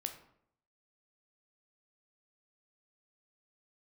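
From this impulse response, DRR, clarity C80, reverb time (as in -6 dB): 6.0 dB, 13.0 dB, 0.70 s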